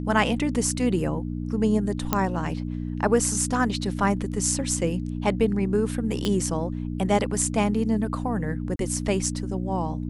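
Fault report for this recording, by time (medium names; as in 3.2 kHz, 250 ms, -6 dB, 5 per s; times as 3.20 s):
hum 60 Hz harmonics 5 -30 dBFS
2.13 s: pop -6 dBFS
6.25 s: pop -13 dBFS
8.76–8.79 s: dropout 32 ms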